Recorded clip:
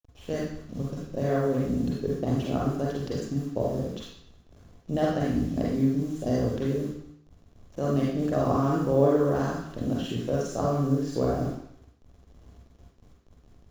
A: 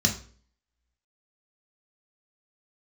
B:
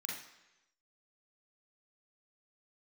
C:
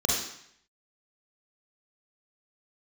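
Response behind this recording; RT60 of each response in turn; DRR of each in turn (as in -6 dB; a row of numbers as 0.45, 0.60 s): C; 0.45, 1.0, 0.70 s; 1.5, -4.0, -4.0 dB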